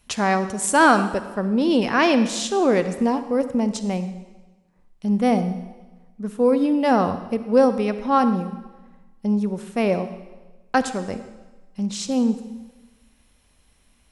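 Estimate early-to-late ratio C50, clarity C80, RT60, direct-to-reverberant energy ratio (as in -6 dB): 11.0 dB, 12.0 dB, 1.2 s, 10.5 dB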